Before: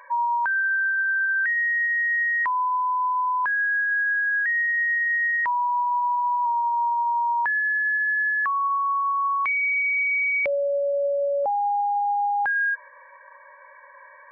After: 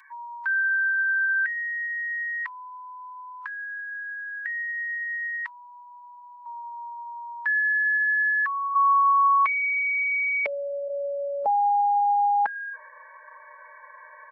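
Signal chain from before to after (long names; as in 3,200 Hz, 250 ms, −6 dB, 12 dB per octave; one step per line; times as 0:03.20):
Bessel high-pass filter 1,900 Hz, order 8, from 0:08.74 390 Hz, from 0:10.88 180 Hz
comb filter 4.6 ms, depth 86%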